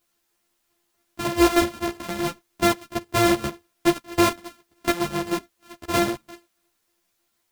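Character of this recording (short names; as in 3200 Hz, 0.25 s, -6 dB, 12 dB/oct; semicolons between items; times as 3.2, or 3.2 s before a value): a buzz of ramps at a fixed pitch in blocks of 128 samples; chopped level 3.2 Hz, depth 65%, duty 70%; a quantiser's noise floor 12-bit, dither triangular; a shimmering, thickened sound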